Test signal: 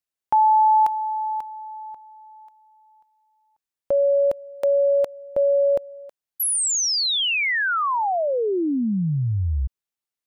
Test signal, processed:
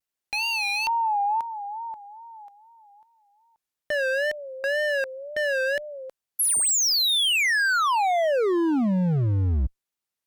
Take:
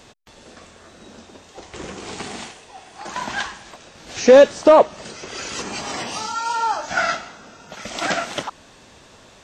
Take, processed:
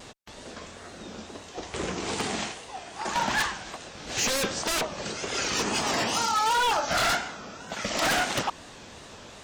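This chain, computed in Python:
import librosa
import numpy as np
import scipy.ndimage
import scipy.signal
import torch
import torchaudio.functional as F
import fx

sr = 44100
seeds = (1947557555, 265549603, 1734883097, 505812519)

y = fx.cheby_harmonics(x, sr, harmonics=(3, 4, 5), levels_db=(-35, -37, -9), full_scale_db=-2.0)
y = fx.wow_flutter(y, sr, seeds[0], rate_hz=2.1, depth_cents=120.0)
y = 10.0 ** (-12.5 / 20.0) * (np.abs((y / 10.0 ** (-12.5 / 20.0) + 3.0) % 4.0 - 2.0) - 1.0)
y = F.gain(torch.from_numpy(y), -6.5).numpy()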